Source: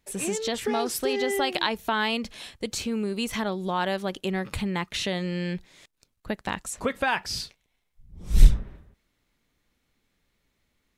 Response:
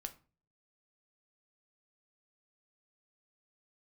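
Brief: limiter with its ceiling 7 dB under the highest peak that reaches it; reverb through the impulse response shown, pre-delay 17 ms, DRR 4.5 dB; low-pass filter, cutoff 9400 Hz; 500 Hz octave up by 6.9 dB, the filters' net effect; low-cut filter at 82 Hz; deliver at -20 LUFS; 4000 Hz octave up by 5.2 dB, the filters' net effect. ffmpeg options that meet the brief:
-filter_complex "[0:a]highpass=82,lowpass=9.4k,equalizer=f=500:t=o:g=8.5,equalizer=f=4k:t=o:g=6.5,alimiter=limit=-13.5dB:level=0:latency=1,asplit=2[a][b];[1:a]atrim=start_sample=2205,adelay=17[c];[b][c]afir=irnorm=-1:irlink=0,volume=-1.5dB[d];[a][d]amix=inputs=2:normalize=0,volume=4.5dB"

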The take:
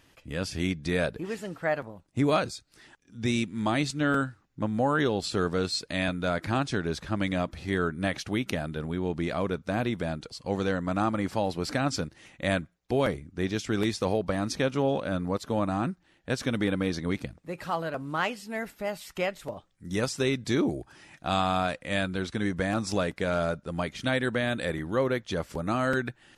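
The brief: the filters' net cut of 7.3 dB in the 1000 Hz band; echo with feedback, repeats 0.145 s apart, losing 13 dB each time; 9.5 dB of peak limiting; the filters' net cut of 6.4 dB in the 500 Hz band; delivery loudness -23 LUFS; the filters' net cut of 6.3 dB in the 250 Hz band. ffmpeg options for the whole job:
-af "equalizer=f=250:t=o:g=-7,equalizer=f=500:t=o:g=-3.5,equalizer=f=1k:t=o:g=-9,alimiter=limit=-22dB:level=0:latency=1,aecho=1:1:145|290|435:0.224|0.0493|0.0108,volume=11.5dB"

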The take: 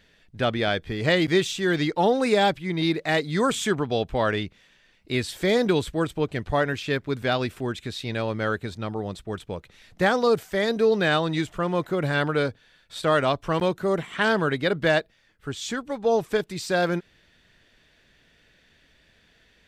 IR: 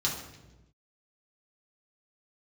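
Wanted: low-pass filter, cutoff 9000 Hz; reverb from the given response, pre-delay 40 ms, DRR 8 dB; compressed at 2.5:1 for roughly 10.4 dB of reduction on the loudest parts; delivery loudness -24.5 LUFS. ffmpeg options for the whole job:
-filter_complex "[0:a]lowpass=9k,acompressor=threshold=-32dB:ratio=2.5,asplit=2[a][b];[1:a]atrim=start_sample=2205,adelay=40[c];[b][c]afir=irnorm=-1:irlink=0,volume=-15dB[d];[a][d]amix=inputs=2:normalize=0,volume=7.5dB"

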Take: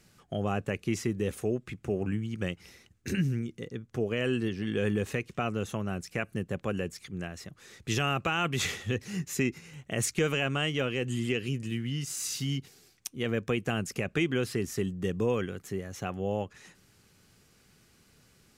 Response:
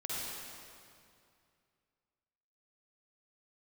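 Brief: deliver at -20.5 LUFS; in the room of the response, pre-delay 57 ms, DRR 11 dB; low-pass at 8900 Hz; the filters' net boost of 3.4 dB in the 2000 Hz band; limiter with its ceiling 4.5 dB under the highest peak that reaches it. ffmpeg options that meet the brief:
-filter_complex "[0:a]lowpass=8.9k,equalizer=f=2k:t=o:g=4.5,alimiter=limit=-18.5dB:level=0:latency=1,asplit=2[a][b];[1:a]atrim=start_sample=2205,adelay=57[c];[b][c]afir=irnorm=-1:irlink=0,volume=-14.5dB[d];[a][d]amix=inputs=2:normalize=0,volume=11.5dB"

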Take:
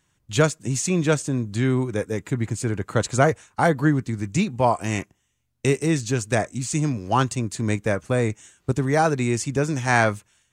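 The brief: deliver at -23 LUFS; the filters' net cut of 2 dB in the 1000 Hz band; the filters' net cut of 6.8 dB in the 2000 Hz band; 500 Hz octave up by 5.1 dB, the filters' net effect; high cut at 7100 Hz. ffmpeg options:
-af "lowpass=7.1k,equalizer=f=500:t=o:g=8,equalizer=f=1k:t=o:g=-5.5,equalizer=f=2k:t=o:g=-7.5,volume=-1.5dB"

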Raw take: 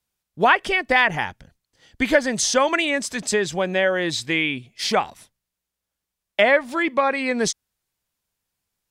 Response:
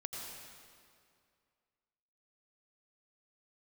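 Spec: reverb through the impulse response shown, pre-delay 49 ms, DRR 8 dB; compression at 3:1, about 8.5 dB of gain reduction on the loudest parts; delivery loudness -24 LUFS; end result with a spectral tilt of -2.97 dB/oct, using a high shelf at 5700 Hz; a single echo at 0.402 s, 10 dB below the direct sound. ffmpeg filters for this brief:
-filter_complex "[0:a]highshelf=f=5.7k:g=-4.5,acompressor=threshold=-23dB:ratio=3,aecho=1:1:402:0.316,asplit=2[a][b];[1:a]atrim=start_sample=2205,adelay=49[c];[b][c]afir=irnorm=-1:irlink=0,volume=-7.5dB[d];[a][d]amix=inputs=2:normalize=0,volume=2dB"

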